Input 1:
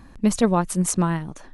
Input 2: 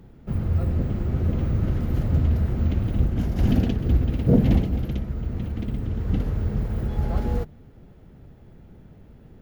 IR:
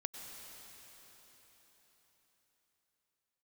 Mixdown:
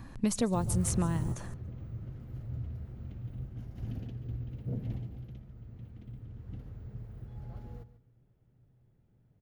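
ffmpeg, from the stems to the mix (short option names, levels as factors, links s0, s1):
-filter_complex "[0:a]volume=0.75,asplit=4[s0][s1][s2][s3];[s1]volume=0.119[s4];[s2]volume=0.075[s5];[1:a]adelay=250,volume=0.473,asplit=2[s6][s7];[s7]volume=0.15[s8];[s3]apad=whole_len=426181[s9];[s6][s9]sidechaingate=range=0.0224:threshold=0.02:ratio=16:detection=peak[s10];[2:a]atrim=start_sample=2205[s11];[s4][s11]afir=irnorm=-1:irlink=0[s12];[s5][s8]amix=inputs=2:normalize=0,aecho=0:1:143|286|429:1|0.18|0.0324[s13];[s0][s10][s12][s13]amix=inputs=4:normalize=0,equalizer=f=120:t=o:w=0.27:g=14.5,acrossover=split=970|4400[s14][s15][s16];[s14]acompressor=threshold=0.0447:ratio=4[s17];[s15]acompressor=threshold=0.00447:ratio=4[s18];[s16]acompressor=threshold=0.02:ratio=4[s19];[s17][s18][s19]amix=inputs=3:normalize=0"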